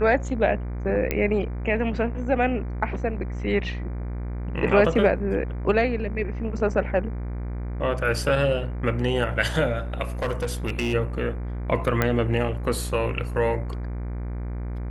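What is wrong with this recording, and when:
mains buzz 60 Hz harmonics 40 −30 dBFS
0:01.11: click −10 dBFS
0:10.22–0:10.94: clipping −21 dBFS
0:12.02: click −8 dBFS

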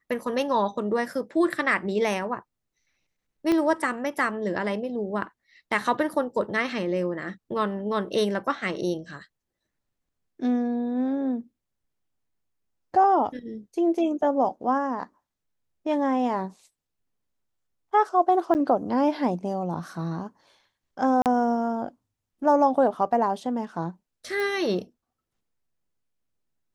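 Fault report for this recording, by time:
0:03.52: click −13 dBFS
0:18.54–0:18.55: drop-out 9.4 ms
0:21.22–0:21.26: drop-out 38 ms
0:24.40: click

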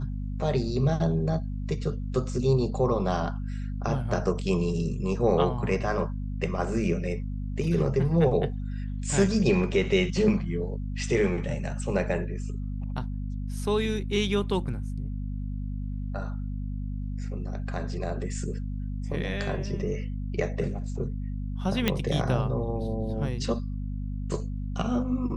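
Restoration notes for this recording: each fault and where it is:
mains hum 50 Hz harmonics 5 −32 dBFS
0:21.88: click −9 dBFS

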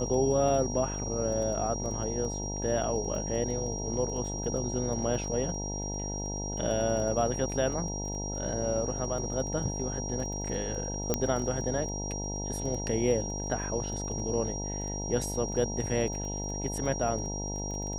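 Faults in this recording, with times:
mains buzz 50 Hz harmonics 19 −36 dBFS
surface crackle 12 per second −36 dBFS
whistle 5,700 Hz −37 dBFS
0:11.14: click −11 dBFS

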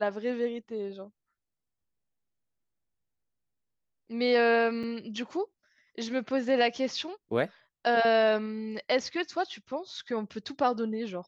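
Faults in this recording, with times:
0:04.83–0:04.84: drop-out 6 ms

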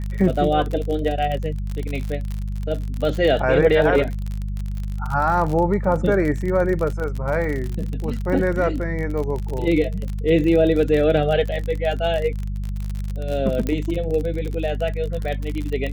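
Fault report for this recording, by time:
surface crackle 43 per second −25 dBFS
mains hum 50 Hz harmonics 4 −26 dBFS
0:13.67: click −12 dBFS

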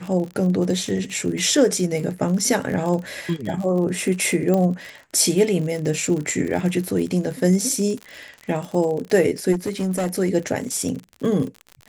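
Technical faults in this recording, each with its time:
surface crackle 54 per second −27 dBFS
0:04.54: click −10 dBFS
0:09.52–0:10.07: clipping −18.5 dBFS

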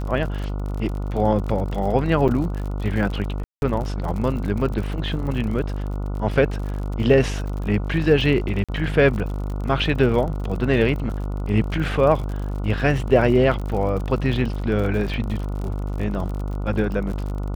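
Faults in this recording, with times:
mains buzz 50 Hz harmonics 29 −26 dBFS
surface crackle 49 per second −29 dBFS
0:02.28–0:02.29: drop-out 6.8 ms
0:03.44–0:03.62: drop-out 181 ms
0:08.64–0:08.69: drop-out 46 ms
0:15.09: drop-out 2.5 ms

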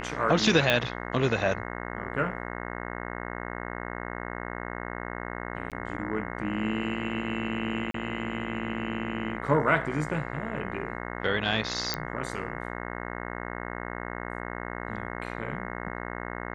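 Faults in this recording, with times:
mains buzz 60 Hz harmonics 36 −36 dBFS
0:00.70: click −9 dBFS
0:05.70–0:05.72: drop-out 17 ms
0:07.91–0:07.94: drop-out 33 ms
0:11.94: click −12 dBFS

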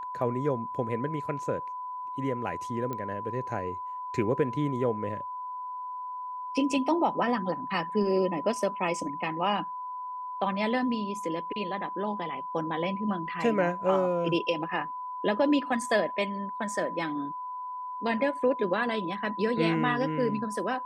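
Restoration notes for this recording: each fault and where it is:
whistle 1,000 Hz −34 dBFS
0:02.93: click −21 dBFS

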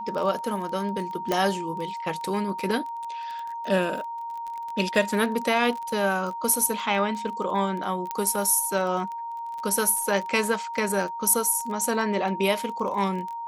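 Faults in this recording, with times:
surface crackle 23 per second −31 dBFS
whistle 930 Hz −31 dBFS
0:01.32: click −10 dBFS
0:08.11: click −14 dBFS

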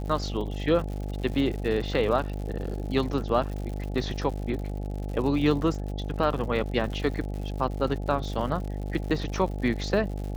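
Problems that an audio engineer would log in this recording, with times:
mains buzz 50 Hz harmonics 17 −32 dBFS
surface crackle 120 per second −35 dBFS

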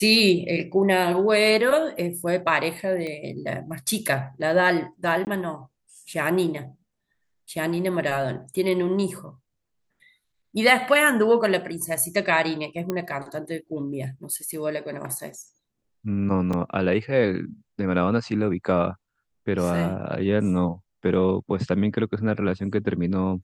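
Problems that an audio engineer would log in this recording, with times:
0:03.07: click −21 dBFS
0:05.25–0:05.27: drop-out 19 ms
0:12.90: click −13 dBFS
0:16.53: drop-out 4.1 ms

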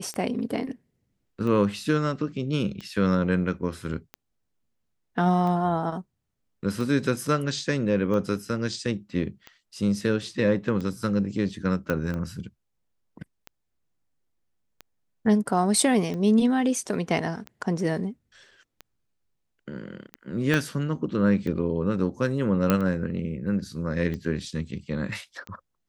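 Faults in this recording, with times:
scratch tick 45 rpm −22 dBFS
0:11.90: click −14 dBFS
0:20.54: click −11 dBFS
0:22.70: click −8 dBFS

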